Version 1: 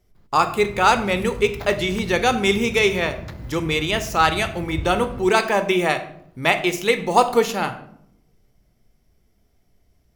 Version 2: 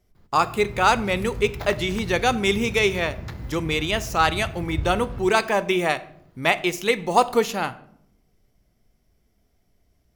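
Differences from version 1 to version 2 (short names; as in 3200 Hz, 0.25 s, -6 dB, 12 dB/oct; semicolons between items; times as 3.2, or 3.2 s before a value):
speech: send -7.5 dB; background: send +8.0 dB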